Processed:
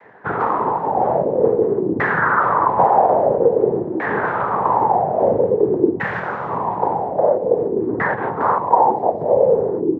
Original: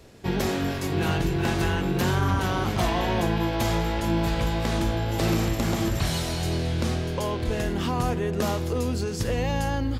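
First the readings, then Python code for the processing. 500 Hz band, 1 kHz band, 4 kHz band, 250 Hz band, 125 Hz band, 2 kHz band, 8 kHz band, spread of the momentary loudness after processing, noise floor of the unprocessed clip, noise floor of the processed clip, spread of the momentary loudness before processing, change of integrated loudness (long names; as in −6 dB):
+12.5 dB, +14.0 dB, below −15 dB, +2.5 dB, −6.5 dB, +8.0 dB, below −30 dB, 6 LU, −29 dBFS, −26 dBFS, 3 LU, +8.0 dB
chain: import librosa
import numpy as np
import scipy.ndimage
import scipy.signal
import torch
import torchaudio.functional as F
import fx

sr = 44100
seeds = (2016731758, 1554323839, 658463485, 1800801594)

y = fx.noise_vocoder(x, sr, seeds[0], bands=6)
y = fx.filter_lfo_lowpass(y, sr, shape='saw_down', hz=0.5, low_hz=310.0, high_hz=1900.0, q=5.8)
y = fx.graphic_eq_10(y, sr, hz=(500, 1000, 2000), db=(10, 11, 5))
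y = y * librosa.db_to_amplitude(-5.0)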